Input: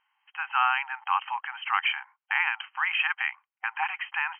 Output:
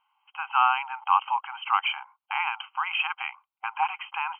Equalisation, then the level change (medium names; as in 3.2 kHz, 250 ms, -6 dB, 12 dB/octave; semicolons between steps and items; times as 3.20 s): peaking EQ 740 Hz +7 dB 1.6 oct; static phaser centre 1.8 kHz, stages 6; 0.0 dB